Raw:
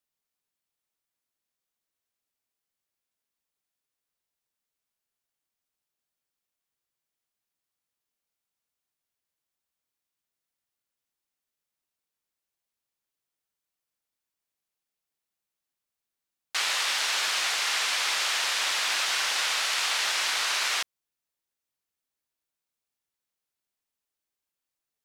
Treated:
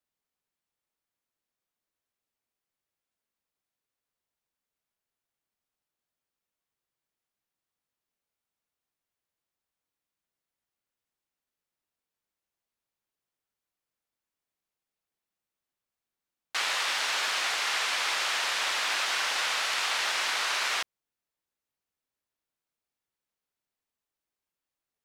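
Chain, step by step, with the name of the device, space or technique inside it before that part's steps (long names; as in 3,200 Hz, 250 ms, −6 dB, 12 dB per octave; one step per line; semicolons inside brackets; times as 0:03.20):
behind a face mask (high-shelf EQ 2,900 Hz −7 dB)
level +1.5 dB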